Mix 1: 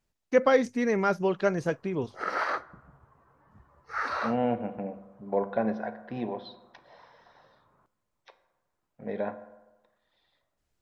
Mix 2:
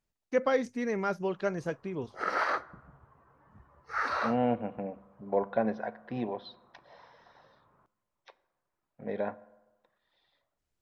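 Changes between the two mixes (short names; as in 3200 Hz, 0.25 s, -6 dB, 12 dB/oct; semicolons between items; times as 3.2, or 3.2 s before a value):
first voice -5.5 dB; second voice: send -8.0 dB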